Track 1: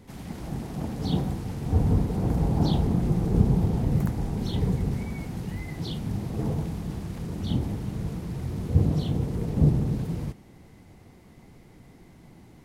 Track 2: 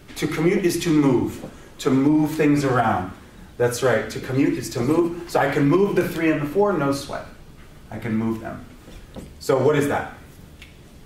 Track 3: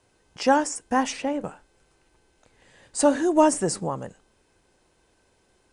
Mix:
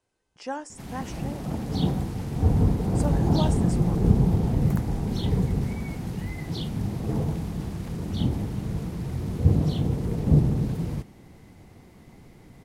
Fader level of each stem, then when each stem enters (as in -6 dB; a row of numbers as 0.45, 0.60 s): +1.5 dB, off, -13.5 dB; 0.70 s, off, 0.00 s